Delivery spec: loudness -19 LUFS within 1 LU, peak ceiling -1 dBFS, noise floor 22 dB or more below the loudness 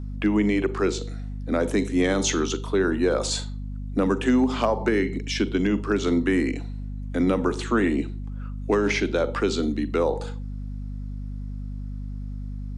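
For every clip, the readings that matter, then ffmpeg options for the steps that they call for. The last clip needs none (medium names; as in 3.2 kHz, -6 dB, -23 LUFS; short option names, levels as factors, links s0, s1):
hum 50 Hz; highest harmonic 250 Hz; hum level -30 dBFS; loudness -24.5 LUFS; peak level -11.0 dBFS; loudness target -19.0 LUFS
-> -af "bandreject=f=50:t=h:w=4,bandreject=f=100:t=h:w=4,bandreject=f=150:t=h:w=4,bandreject=f=200:t=h:w=4,bandreject=f=250:t=h:w=4"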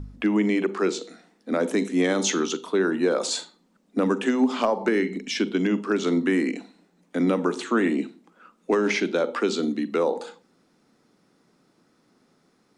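hum not found; loudness -24.5 LUFS; peak level -10.0 dBFS; loudness target -19.0 LUFS
-> -af "volume=1.88"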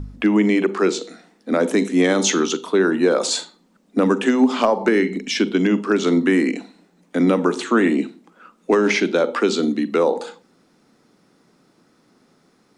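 loudness -19.0 LUFS; peak level -4.5 dBFS; noise floor -60 dBFS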